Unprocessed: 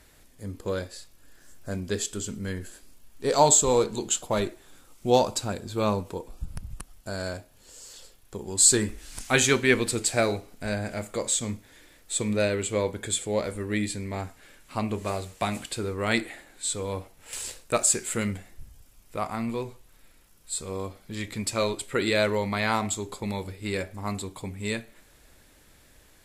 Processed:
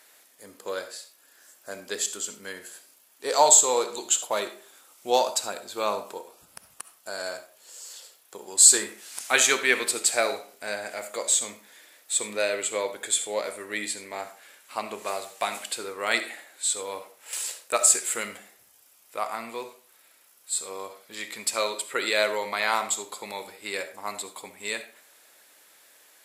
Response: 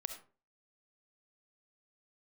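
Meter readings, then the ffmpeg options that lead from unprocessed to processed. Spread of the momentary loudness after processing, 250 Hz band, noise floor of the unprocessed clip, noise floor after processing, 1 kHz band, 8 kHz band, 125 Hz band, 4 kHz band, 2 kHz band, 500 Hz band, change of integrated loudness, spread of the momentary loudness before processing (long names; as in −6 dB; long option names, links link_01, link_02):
21 LU, −11.5 dB, −57 dBFS, −59 dBFS, +1.5 dB, +4.0 dB, below −20 dB, +2.5 dB, +2.0 dB, −2.0 dB, +2.0 dB, 18 LU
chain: -filter_complex "[0:a]highpass=580,highshelf=frequency=12000:gain=8,asplit=2[link_01][link_02];[1:a]atrim=start_sample=2205[link_03];[link_02][link_03]afir=irnorm=-1:irlink=0,volume=5.5dB[link_04];[link_01][link_04]amix=inputs=2:normalize=0,volume=-6dB"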